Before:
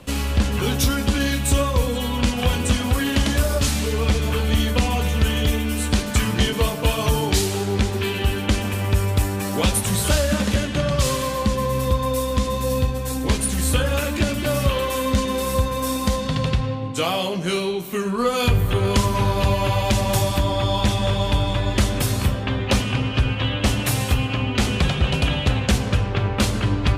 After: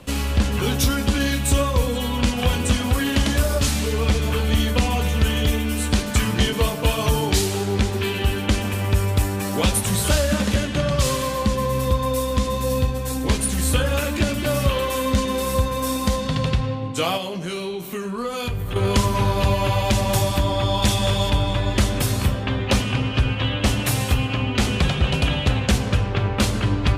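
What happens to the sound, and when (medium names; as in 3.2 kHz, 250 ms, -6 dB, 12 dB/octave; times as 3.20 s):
17.17–18.76 s: compression 2.5:1, threshold -26 dBFS
20.82–21.30 s: treble shelf 4.5 kHz +9.5 dB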